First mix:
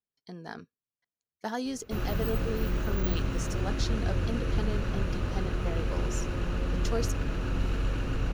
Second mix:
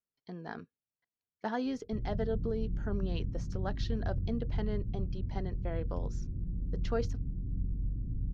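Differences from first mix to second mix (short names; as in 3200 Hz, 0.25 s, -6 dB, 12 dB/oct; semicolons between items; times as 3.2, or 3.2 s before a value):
background: add ladder low-pass 250 Hz, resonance 20%; master: add air absorption 230 m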